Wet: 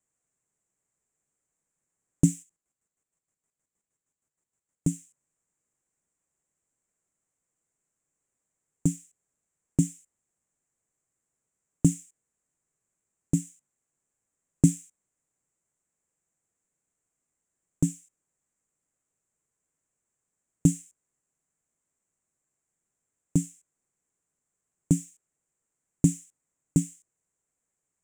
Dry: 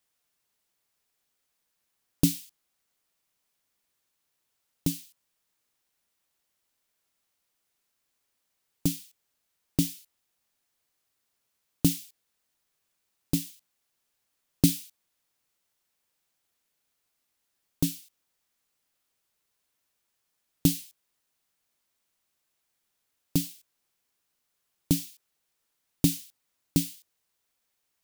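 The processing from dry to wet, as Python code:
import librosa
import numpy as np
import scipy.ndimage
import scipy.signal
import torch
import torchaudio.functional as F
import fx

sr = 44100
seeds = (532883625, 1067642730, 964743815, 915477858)

y = fx.peak_eq(x, sr, hz=150.0, db=5.5, octaves=0.58)
y = fx.chopper(y, sr, hz=6.4, depth_pct=60, duty_pct=40, at=(2.42, 4.87), fade=0.02)
y = fx.curve_eq(y, sr, hz=(440.0, 840.0, 2100.0, 4500.0, 7400.0, 13000.0), db=(0, -5, -7, -26, 7, -22))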